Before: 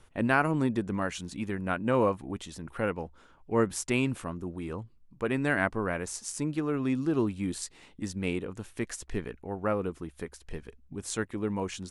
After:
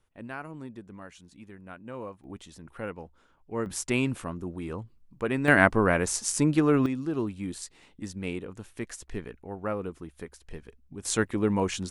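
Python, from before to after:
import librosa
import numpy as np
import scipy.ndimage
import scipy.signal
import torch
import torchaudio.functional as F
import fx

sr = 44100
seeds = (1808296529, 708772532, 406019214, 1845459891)

y = fx.gain(x, sr, db=fx.steps((0.0, -14.0), (2.24, -6.0), (3.66, 1.0), (5.48, 8.0), (6.86, -2.5), (11.05, 6.0)))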